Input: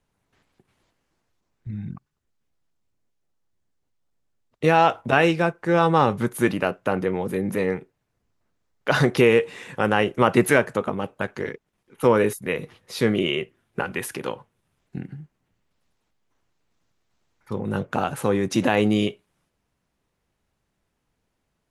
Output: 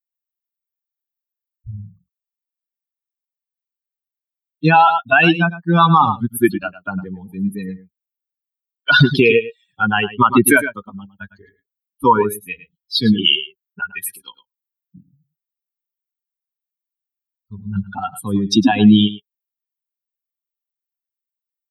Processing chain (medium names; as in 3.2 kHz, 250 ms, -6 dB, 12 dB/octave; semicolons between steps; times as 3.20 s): expander on every frequency bin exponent 3; high-pass 200 Hz 6 dB/octave; static phaser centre 2 kHz, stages 6; delay 106 ms -15.5 dB; loudness maximiser +23 dB; trim -1 dB